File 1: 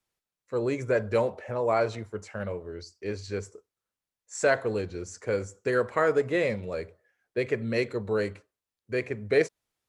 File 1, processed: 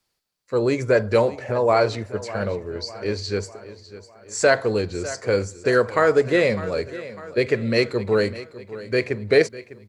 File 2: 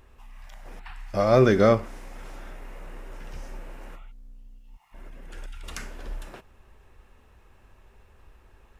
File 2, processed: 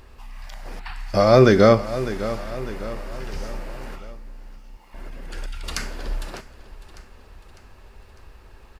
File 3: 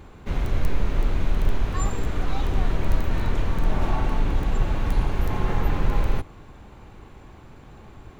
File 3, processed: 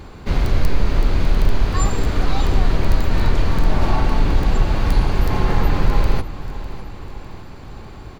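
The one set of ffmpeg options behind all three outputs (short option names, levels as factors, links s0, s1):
-filter_complex "[0:a]aecho=1:1:602|1204|1806|2408:0.158|0.0792|0.0396|0.0198,asplit=2[s0][s1];[s1]alimiter=limit=0.188:level=0:latency=1:release=287,volume=0.841[s2];[s0][s2]amix=inputs=2:normalize=0,equalizer=f=4600:w=4.1:g=9,volume=1.26"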